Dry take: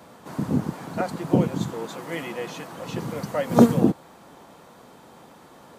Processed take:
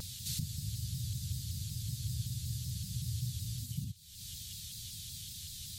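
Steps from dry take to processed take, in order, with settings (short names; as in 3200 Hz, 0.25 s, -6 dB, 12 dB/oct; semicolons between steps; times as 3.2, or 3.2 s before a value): compressor 5:1, threshold -36 dBFS, peak gain reduction 24 dB; elliptic band-stop 100–3900 Hz, stop band 70 dB; spectral freeze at 0.46, 3.17 s; shaped vibrato saw down 5.3 Hz, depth 160 cents; gain +16.5 dB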